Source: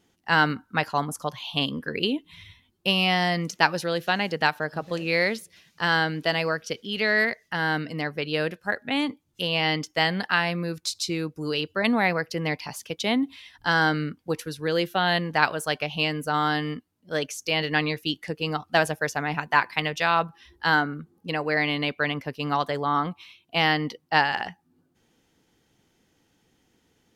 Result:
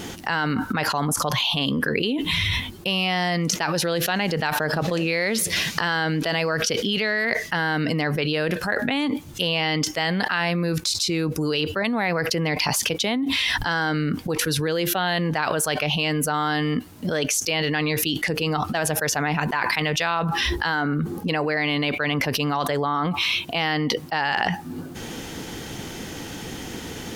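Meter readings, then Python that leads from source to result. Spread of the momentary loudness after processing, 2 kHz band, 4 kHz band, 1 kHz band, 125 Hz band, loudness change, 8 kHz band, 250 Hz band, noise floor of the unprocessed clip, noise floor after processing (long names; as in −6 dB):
5 LU, +1.0 dB, +4.0 dB, 0.0 dB, +5.5 dB, +2.5 dB, +12.5 dB, +4.0 dB, −68 dBFS, −36 dBFS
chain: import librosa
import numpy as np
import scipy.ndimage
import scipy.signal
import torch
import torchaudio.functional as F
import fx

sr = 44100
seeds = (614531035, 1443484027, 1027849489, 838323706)

y = fx.env_flatten(x, sr, amount_pct=100)
y = y * librosa.db_to_amplitude(-7.5)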